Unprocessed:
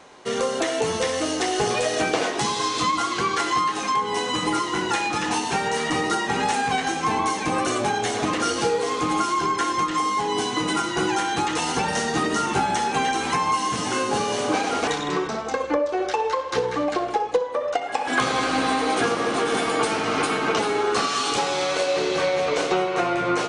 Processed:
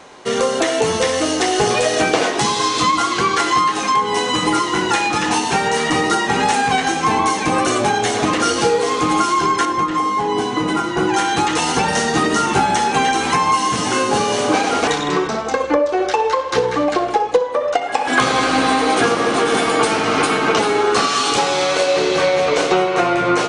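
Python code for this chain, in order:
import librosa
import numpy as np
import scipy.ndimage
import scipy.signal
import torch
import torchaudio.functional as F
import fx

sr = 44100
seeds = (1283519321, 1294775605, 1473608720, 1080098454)

y = fx.high_shelf(x, sr, hz=2400.0, db=-10.5, at=(9.65, 11.14))
y = y * 10.0 ** (6.5 / 20.0)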